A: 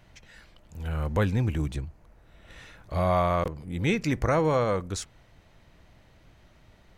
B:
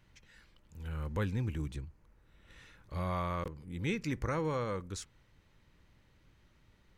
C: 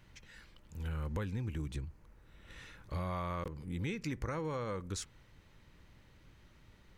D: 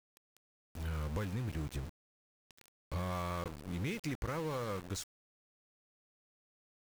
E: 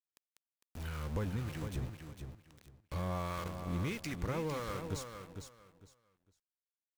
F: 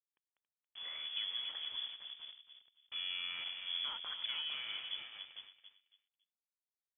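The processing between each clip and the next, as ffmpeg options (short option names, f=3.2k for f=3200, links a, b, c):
-af "equalizer=f=680:w=4:g=-11.5,volume=-8.5dB"
-af "acompressor=threshold=-39dB:ratio=6,volume=4.5dB"
-af "aeval=exprs='val(0)*gte(abs(val(0)),0.0075)':c=same"
-filter_complex "[0:a]acrossover=split=990[a][b];[a]aeval=exprs='val(0)*(1-0.5/2+0.5/2*cos(2*PI*1.6*n/s))':c=same[c];[b]aeval=exprs='val(0)*(1-0.5/2-0.5/2*cos(2*PI*1.6*n/s))':c=same[d];[c][d]amix=inputs=2:normalize=0,aecho=1:1:454|908|1362:0.422|0.0928|0.0204,volume=2dB"
-filter_complex "[0:a]aeval=exprs='val(0)*gte(abs(val(0)),0.00596)':c=same,asplit=2[a][b];[b]adelay=277,lowpass=f=2.1k:p=1,volume=-8.5dB,asplit=2[c][d];[d]adelay=277,lowpass=f=2.1k:p=1,volume=0.26,asplit=2[e][f];[f]adelay=277,lowpass=f=2.1k:p=1,volume=0.26[g];[a][c][e][g]amix=inputs=4:normalize=0,lowpass=f=3k:t=q:w=0.5098,lowpass=f=3k:t=q:w=0.6013,lowpass=f=3k:t=q:w=0.9,lowpass=f=3k:t=q:w=2.563,afreqshift=-3500,volume=-4.5dB"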